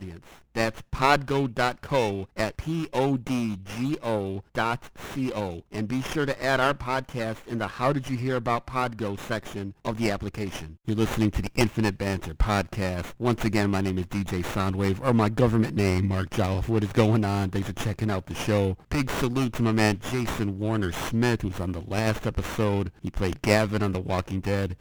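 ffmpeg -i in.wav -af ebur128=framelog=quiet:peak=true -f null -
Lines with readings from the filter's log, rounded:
Integrated loudness:
  I:         -26.8 LUFS
  Threshold: -36.8 LUFS
Loudness range:
  LRA:         4.1 LU
  Threshold: -46.8 LUFS
  LRA low:   -28.9 LUFS
  LRA high:  -24.9 LUFS
True peak:
  Peak:       -5.9 dBFS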